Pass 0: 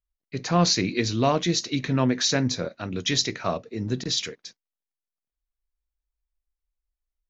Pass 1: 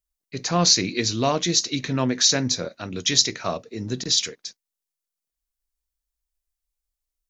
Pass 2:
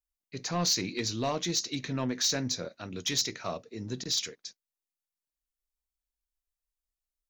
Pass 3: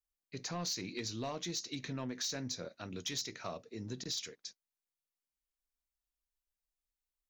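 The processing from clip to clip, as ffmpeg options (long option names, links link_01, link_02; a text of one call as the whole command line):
ffmpeg -i in.wav -af "bass=frequency=250:gain=-2,treble=frequency=4000:gain=9" out.wav
ffmpeg -i in.wav -af "asoftclip=type=tanh:threshold=-12.5dB,volume=-7.5dB" out.wav
ffmpeg -i in.wav -af "acompressor=threshold=-35dB:ratio=2.5,volume=-3.5dB" out.wav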